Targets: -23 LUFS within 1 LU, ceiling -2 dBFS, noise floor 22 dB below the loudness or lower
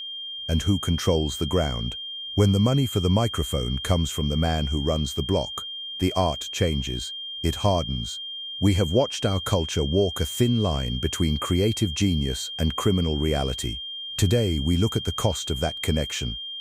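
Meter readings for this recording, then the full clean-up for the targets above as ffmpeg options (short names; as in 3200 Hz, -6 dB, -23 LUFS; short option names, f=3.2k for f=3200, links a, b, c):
steady tone 3200 Hz; tone level -32 dBFS; loudness -24.5 LUFS; peak -8.5 dBFS; loudness target -23.0 LUFS
-> -af "bandreject=f=3.2k:w=30"
-af "volume=1.5dB"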